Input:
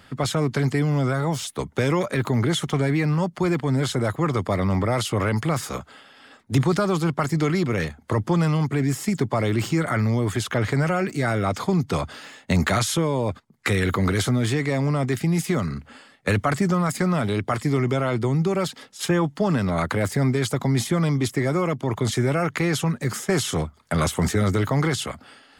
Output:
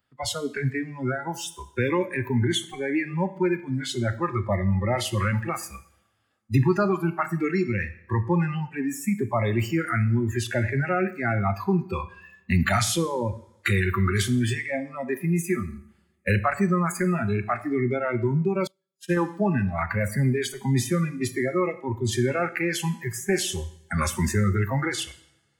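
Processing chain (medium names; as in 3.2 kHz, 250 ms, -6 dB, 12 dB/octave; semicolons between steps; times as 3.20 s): spectral noise reduction 26 dB; two-slope reverb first 0.62 s, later 2 s, from -25 dB, DRR 10.5 dB; 18.67–19.17 s: upward expansion 2.5:1, over -41 dBFS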